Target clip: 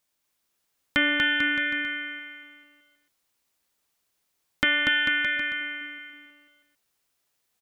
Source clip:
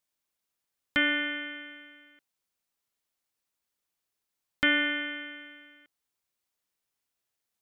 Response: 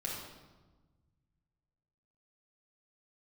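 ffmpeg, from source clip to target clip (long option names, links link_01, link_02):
-filter_complex "[0:a]asettb=1/sr,asplit=3[link_01][link_02][link_03];[link_01]atrim=end=4.644[link_04];[link_02]atrim=start=4.64:end=5.37,asetpts=PTS-STARTPTS,afade=type=in:duration=0.004:curve=qsin,afade=type=out:start_time=0.726:duration=0.004:curve=qsin,highpass=frequency=810:poles=1[link_05];[link_03]atrim=start=5.366[link_06];[link_04][link_05]acrossfade=duration=0.004:curve1=hsin:curve2=qsin[link_07];[link_07][link_06]acrossfade=duration=0.004:curve1=qsin:curve2=hsin,asplit=2[link_08][link_09];[link_09]acompressor=threshold=-33dB:ratio=6,volume=1.5dB[link_10];[link_08][link_10]amix=inputs=2:normalize=0,aecho=1:1:240|444|617.4|764.8|890.1:0.631|0.398|0.251|0.158|0.1"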